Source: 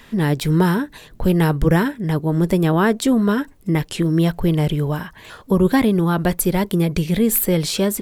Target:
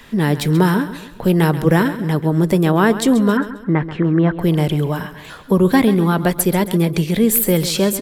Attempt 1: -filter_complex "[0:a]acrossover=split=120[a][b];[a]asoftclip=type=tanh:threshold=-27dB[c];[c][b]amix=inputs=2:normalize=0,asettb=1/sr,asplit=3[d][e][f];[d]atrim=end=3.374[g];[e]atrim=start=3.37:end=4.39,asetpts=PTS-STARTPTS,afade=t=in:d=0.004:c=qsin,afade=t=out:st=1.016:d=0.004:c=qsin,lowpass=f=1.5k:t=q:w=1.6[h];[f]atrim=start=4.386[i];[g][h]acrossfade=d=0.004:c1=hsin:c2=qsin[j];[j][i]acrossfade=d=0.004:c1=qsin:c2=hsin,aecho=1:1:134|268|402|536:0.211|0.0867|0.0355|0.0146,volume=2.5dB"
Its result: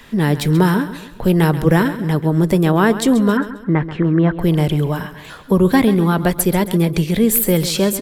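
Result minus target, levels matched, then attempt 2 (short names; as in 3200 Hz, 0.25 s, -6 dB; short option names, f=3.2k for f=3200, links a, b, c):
soft clip: distortion -4 dB
-filter_complex "[0:a]acrossover=split=120[a][b];[a]asoftclip=type=tanh:threshold=-36.5dB[c];[c][b]amix=inputs=2:normalize=0,asettb=1/sr,asplit=3[d][e][f];[d]atrim=end=3.374[g];[e]atrim=start=3.37:end=4.39,asetpts=PTS-STARTPTS,afade=t=in:d=0.004:c=qsin,afade=t=out:st=1.016:d=0.004:c=qsin,lowpass=f=1.5k:t=q:w=1.6[h];[f]atrim=start=4.386[i];[g][h]acrossfade=d=0.004:c1=hsin:c2=qsin[j];[j][i]acrossfade=d=0.004:c1=qsin:c2=hsin,aecho=1:1:134|268|402|536:0.211|0.0867|0.0355|0.0146,volume=2.5dB"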